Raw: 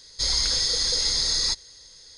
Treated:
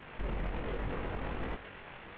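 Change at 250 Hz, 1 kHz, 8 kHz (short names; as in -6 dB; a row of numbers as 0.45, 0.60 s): +5.5 dB, +1.0 dB, under -40 dB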